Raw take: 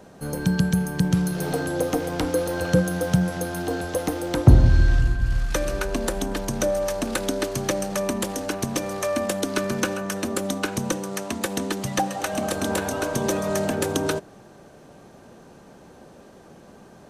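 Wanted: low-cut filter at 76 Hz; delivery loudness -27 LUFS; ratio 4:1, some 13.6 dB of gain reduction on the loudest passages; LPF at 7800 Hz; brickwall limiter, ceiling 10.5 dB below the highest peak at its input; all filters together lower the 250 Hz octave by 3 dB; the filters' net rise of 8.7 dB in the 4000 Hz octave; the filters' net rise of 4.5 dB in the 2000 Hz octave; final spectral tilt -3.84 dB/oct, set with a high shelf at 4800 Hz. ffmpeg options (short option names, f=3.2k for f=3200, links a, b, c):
-af "highpass=76,lowpass=7.8k,equalizer=f=250:t=o:g=-4.5,equalizer=f=2k:t=o:g=4,equalizer=f=4k:t=o:g=7.5,highshelf=f=4.8k:g=5,acompressor=threshold=-25dB:ratio=4,volume=3.5dB,alimiter=limit=-15dB:level=0:latency=1"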